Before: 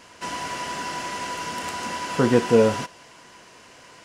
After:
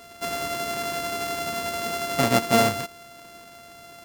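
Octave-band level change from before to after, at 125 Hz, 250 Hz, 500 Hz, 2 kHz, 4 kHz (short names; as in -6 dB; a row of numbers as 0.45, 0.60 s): -2.0, -3.5, -4.0, +1.5, +3.5 dB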